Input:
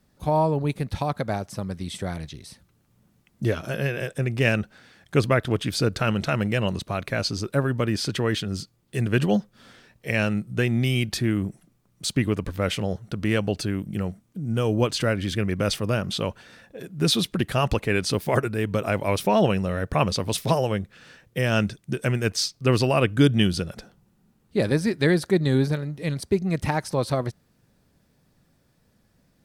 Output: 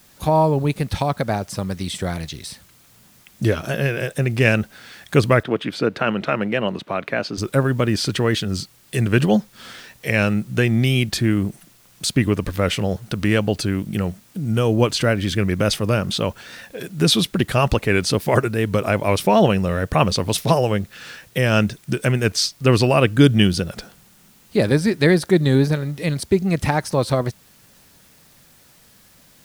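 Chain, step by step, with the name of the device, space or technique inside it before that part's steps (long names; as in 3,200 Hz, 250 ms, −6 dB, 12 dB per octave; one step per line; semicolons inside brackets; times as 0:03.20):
noise-reduction cassette on a plain deck (one half of a high-frequency compander encoder only; tape wow and flutter; white noise bed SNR 34 dB)
0:05.43–0:07.38: three-way crossover with the lows and the highs turned down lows −22 dB, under 170 Hz, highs −17 dB, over 3,400 Hz
level +5 dB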